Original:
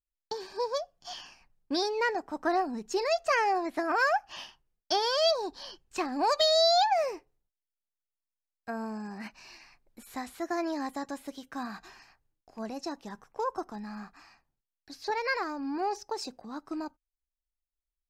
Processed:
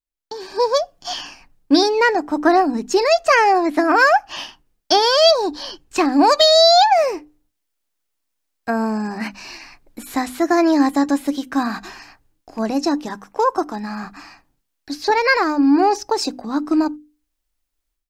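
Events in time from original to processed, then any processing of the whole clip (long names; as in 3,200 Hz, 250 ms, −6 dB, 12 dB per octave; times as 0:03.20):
0:13.06–0:14.04: low-shelf EQ 170 Hz −8.5 dB
whole clip: parametric band 290 Hz +8.5 dB 0.27 octaves; automatic gain control gain up to 15 dB; mains-hum notches 50/100/150/200/250/300 Hz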